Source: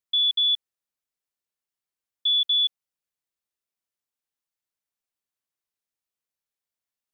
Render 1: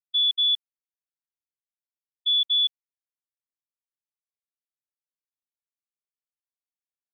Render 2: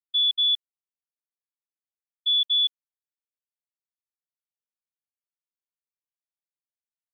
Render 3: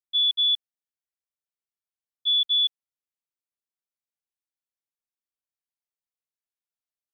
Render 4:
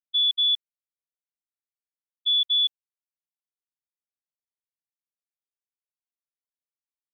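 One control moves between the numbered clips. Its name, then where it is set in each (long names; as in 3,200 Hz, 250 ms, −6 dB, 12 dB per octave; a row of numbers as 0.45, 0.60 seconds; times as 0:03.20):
noise gate, range: −41, −59, −10, −28 decibels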